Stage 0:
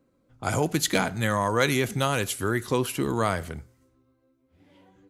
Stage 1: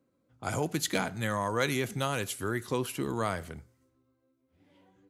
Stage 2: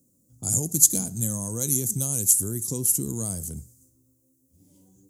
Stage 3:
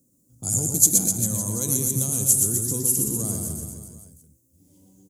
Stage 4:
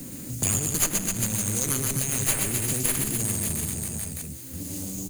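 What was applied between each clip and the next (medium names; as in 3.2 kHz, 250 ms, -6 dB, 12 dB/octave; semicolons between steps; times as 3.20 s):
high-pass 69 Hz; trim -6 dB
in parallel at +2 dB: compression, threshold -38 dBFS, peak gain reduction 14.5 dB; on the sum: FFT filter 200 Hz 0 dB, 1.9 kHz -29 dB, 3.8 kHz -13 dB, 6.9 kHz +15 dB; trim +2.5 dB
reverse bouncing-ball echo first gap 120 ms, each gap 1.1×, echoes 5
comb filter that takes the minimum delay 0.45 ms; three bands compressed up and down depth 100%; trim -2 dB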